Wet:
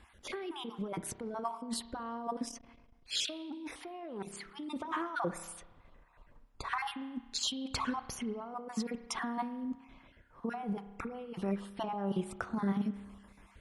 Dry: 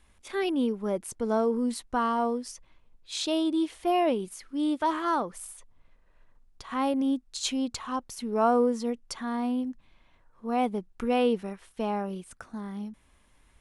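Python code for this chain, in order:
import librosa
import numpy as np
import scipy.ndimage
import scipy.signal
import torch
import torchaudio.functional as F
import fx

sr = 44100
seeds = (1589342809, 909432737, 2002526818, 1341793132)

y = fx.spec_dropout(x, sr, seeds[0], share_pct=26)
y = fx.highpass(y, sr, hz=47.0, slope=6)
y = fx.high_shelf(y, sr, hz=3500.0, db=-10.5)
y = fx.over_compress(y, sr, threshold_db=-38.0, ratio=-1.0)
y = fx.rev_spring(y, sr, rt60_s=1.2, pass_ms=(30,), chirp_ms=30, drr_db=11.5)
y = fx.transformer_sat(y, sr, knee_hz=1600.0, at=(2.44, 4.47))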